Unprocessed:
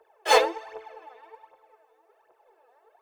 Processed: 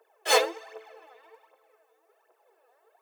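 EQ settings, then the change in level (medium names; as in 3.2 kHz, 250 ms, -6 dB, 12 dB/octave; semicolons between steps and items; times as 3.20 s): high-pass 260 Hz 12 dB/octave; treble shelf 5 kHz +9.5 dB; band-stop 880 Hz, Q 12; -3.0 dB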